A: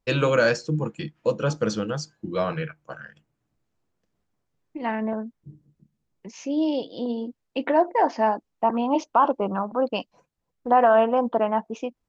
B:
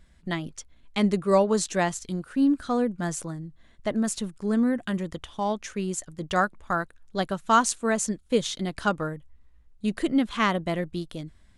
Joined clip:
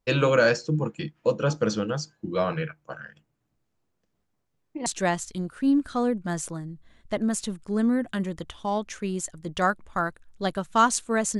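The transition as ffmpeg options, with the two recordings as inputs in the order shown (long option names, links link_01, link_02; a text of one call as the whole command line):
ffmpeg -i cue0.wav -i cue1.wav -filter_complex "[0:a]apad=whole_dur=11.39,atrim=end=11.39,atrim=end=4.862[link_01];[1:a]atrim=start=1.598:end=8.13[link_02];[link_01][link_02]acrossfade=duration=0.004:curve1=hsin:curve2=hsin" out.wav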